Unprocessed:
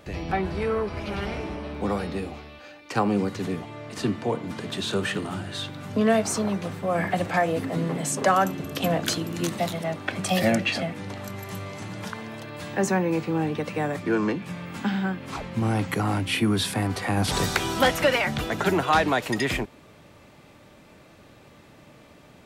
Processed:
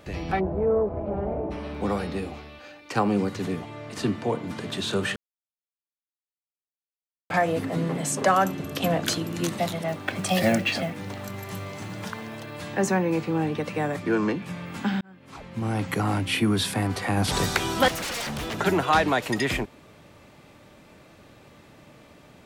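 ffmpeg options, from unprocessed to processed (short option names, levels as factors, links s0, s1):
-filter_complex "[0:a]asplit=3[s0][s1][s2];[s0]afade=t=out:st=0.39:d=0.02[s3];[s1]lowpass=f=650:t=q:w=2.1,afade=t=in:st=0.39:d=0.02,afade=t=out:st=1.5:d=0.02[s4];[s2]afade=t=in:st=1.5:d=0.02[s5];[s3][s4][s5]amix=inputs=3:normalize=0,asettb=1/sr,asplit=3[s6][s7][s8];[s6]atrim=end=9.884[s9];[s7]atrim=start=9.88:end=12.57,asetpts=PTS-STARTPTS,afade=t=in:d=0.004:c=qsin,afade=t=out:st=2.686:d=0.004:c=qsin,acrusher=bits=6:mode=log:mix=0:aa=0.000001[s10];[s8]atrim=start=12.566[s11];[s9][s10]acrossfade=d=0.004:c1=hsin:c2=qsin[s12];[s12][s11]acrossfade=d=0.004:c1=qsin:c2=hsin,asettb=1/sr,asplit=3[s13][s14][s15];[s13]atrim=end=17.884[s16];[s14]atrim=start=17.88:end=18.59,asetpts=PTS-STARTPTS,afade=t=in:d=0.004:c=qsin,afade=t=out:st=0.706:d=0.004:c=qsin,aeval=exprs='0.0501*(abs(mod(val(0)/0.0501+3,4)-2)-1)':c=same[s17];[s15]atrim=start=18.586[s18];[s16][s17]acrossfade=d=0.004:c1=hsin:c2=qsin[s19];[s19][s18]acrossfade=d=0.004:c1=qsin:c2=hsin,asplit=4[s20][s21][s22][s23];[s20]atrim=end=5.16,asetpts=PTS-STARTPTS,afade=t=out:st=5.156:d=0.004:c=hsin[s24];[s21]atrim=start=5.16:end=7.3,asetpts=PTS-STARTPTS,volume=0[s25];[s22]atrim=start=7.3:end=15.01,asetpts=PTS-STARTPTS,afade=t=in:d=0.004:c=hsin,afade=t=out:st=7.706:d=0.004:c=hsin[s26];[s23]atrim=start=15.01,asetpts=PTS-STARTPTS,afade=t=in:d=0.98[s27];[s24][s25][s26][s27]concat=n=4:v=0:a=1"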